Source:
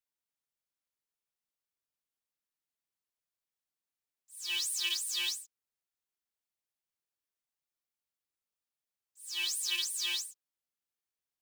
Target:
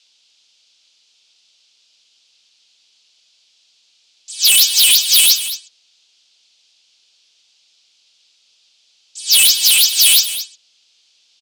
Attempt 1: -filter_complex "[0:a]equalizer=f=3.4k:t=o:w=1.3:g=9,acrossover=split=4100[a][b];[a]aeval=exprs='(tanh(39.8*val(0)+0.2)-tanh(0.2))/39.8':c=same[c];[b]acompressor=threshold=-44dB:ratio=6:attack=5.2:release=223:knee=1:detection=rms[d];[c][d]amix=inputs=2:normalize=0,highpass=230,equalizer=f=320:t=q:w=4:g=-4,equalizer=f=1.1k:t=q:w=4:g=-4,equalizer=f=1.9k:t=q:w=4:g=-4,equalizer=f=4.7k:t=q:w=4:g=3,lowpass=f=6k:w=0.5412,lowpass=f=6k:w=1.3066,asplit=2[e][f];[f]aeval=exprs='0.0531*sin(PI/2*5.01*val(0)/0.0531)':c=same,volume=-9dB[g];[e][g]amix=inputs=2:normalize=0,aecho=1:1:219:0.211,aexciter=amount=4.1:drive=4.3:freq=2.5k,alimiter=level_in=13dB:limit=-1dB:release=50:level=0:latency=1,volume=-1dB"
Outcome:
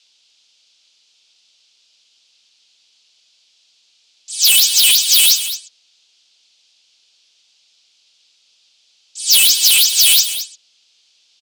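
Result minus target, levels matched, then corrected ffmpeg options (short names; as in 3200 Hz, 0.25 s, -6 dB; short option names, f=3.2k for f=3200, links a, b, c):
compressor: peak gain reduction -7.5 dB
-filter_complex "[0:a]equalizer=f=3.4k:t=o:w=1.3:g=9,acrossover=split=4100[a][b];[a]aeval=exprs='(tanh(39.8*val(0)+0.2)-tanh(0.2))/39.8':c=same[c];[b]acompressor=threshold=-53dB:ratio=6:attack=5.2:release=223:knee=1:detection=rms[d];[c][d]amix=inputs=2:normalize=0,highpass=230,equalizer=f=320:t=q:w=4:g=-4,equalizer=f=1.1k:t=q:w=4:g=-4,equalizer=f=1.9k:t=q:w=4:g=-4,equalizer=f=4.7k:t=q:w=4:g=3,lowpass=f=6k:w=0.5412,lowpass=f=6k:w=1.3066,asplit=2[e][f];[f]aeval=exprs='0.0531*sin(PI/2*5.01*val(0)/0.0531)':c=same,volume=-9dB[g];[e][g]amix=inputs=2:normalize=0,aecho=1:1:219:0.211,aexciter=amount=4.1:drive=4.3:freq=2.5k,alimiter=level_in=13dB:limit=-1dB:release=50:level=0:latency=1,volume=-1dB"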